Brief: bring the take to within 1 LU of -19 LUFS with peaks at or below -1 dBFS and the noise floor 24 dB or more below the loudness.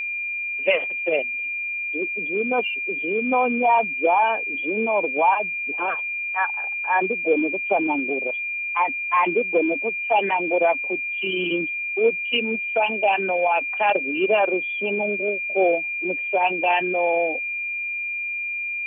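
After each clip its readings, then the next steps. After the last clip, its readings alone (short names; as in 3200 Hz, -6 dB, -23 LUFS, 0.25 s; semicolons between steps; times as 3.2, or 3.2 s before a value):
steady tone 2400 Hz; tone level -25 dBFS; loudness -22.0 LUFS; peak -7.5 dBFS; loudness target -19.0 LUFS
-> notch 2400 Hz, Q 30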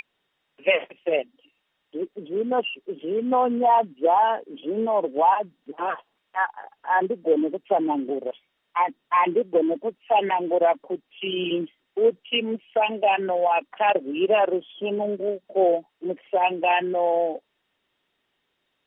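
steady tone none; loudness -24.0 LUFS; peak -9.0 dBFS; loudness target -19.0 LUFS
-> gain +5 dB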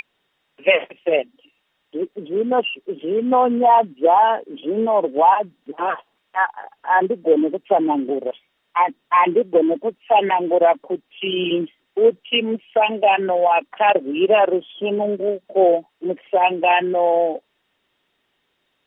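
loudness -19.0 LUFS; peak -4.0 dBFS; noise floor -70 dBFS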